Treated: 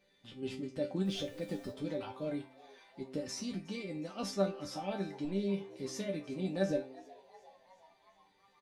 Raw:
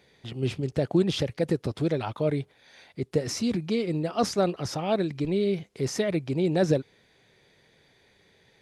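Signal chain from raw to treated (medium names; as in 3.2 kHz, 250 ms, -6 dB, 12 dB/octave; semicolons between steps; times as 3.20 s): coarse spectral quantiser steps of 15 dB; 1.04–1.70 s: added noise pink -52 dBFS; chord resonator G3 sus4, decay 0.24 s; de-hum 130.3 Hz, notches 19; on a send: frequency-shifting echo 365 ms, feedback 62%, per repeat +120 Hz, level -22 dB; on the sum: trim +6 dB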